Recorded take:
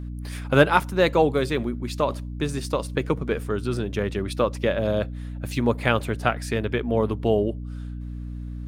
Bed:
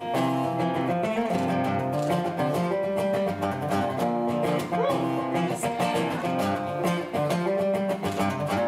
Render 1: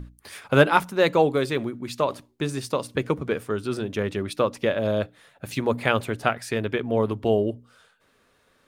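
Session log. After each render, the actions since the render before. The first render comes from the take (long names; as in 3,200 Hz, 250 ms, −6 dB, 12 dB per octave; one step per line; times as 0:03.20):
mains-hum notches 60/120/180/240/300 Hz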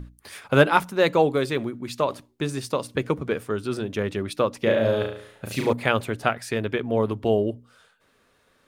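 0:04.63–0:05.73: flutter between parallel walls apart 6.1 metres, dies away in 0.59 s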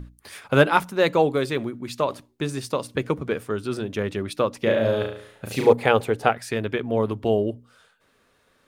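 0:05.51–0:06.32: hollow resonant body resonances 460/790 Hz, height 10 dB, ringing for 30 ms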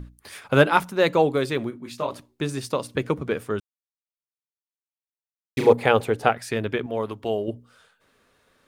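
0:01.70–0:02.10: micro pitch shift up and down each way 31 cents → 11 cents
0:03.60–0:05.57: silence
0:06.86–0:07.48: low-shelf EQ 430 Hz −9.5 dB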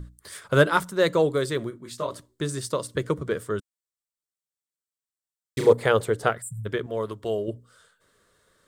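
thirty-one-band graphic EQ 250 Hz −9 dB, 800 Hz −11 dB, 2,500 Hz −11 dB, 8,000 Hz +8 dB
0:06.42–0:06.66: time-frequency box erased 210–7,100 Hz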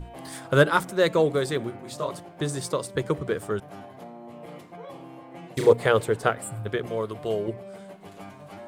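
mix in bed −17 dB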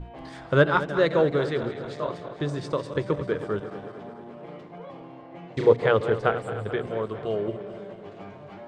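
feedback delay that plays each chunk backwards 109 ms, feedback 80%, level −12.5 dB
high-frequency loss of the air 170 metres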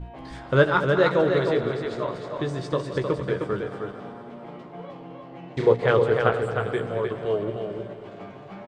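double-tracking delay 16 ms −8 dB
single-tap delay 309 ms −5 dB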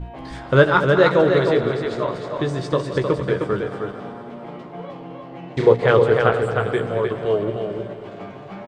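level +5 dB
brickwall limiter −2 dBFS, peak gain reduction 2 dB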